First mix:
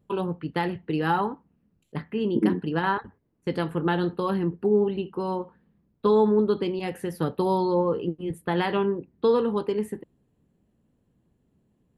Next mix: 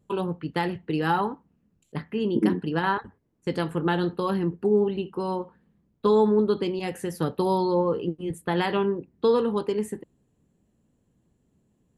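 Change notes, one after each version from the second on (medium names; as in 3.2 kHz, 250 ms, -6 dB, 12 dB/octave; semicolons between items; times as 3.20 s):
master: add peaking EQ 7.2 kHz +9.5 dB 0.91 oct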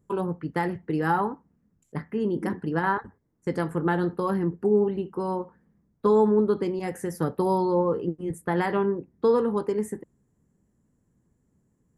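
second voice -11.0 dB; master: add high-order bell 3.3 kHz -11 dB 1 oct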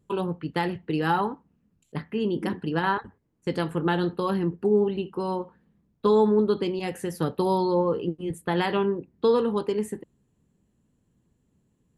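master: add high-order bell 3.3 kHz +11 dB 1 oct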